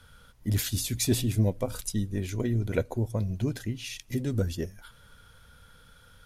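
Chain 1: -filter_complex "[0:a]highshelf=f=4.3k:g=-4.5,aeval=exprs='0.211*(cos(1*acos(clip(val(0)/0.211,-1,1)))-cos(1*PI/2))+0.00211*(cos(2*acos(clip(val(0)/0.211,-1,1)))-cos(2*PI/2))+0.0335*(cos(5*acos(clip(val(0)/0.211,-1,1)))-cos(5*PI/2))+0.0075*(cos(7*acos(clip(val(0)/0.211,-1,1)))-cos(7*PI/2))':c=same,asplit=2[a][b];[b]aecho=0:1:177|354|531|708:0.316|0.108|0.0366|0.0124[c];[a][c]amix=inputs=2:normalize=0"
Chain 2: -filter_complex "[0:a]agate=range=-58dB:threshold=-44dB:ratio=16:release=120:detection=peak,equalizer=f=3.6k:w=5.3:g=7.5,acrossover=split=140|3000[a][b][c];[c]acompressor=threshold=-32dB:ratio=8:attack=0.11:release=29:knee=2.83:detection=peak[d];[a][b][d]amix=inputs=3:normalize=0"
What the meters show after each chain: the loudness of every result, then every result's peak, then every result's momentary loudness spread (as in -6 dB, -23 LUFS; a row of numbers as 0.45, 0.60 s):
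-27.5, -30.5 LUFS; -13.5, -12.0 dBFS; 8, 7 LU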